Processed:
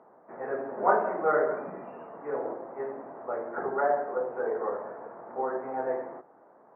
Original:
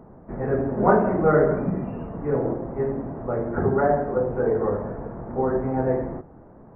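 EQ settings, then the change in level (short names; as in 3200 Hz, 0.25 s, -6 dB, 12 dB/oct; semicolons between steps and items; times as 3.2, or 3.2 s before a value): BPF 620–2100 Hz; -1.5 dB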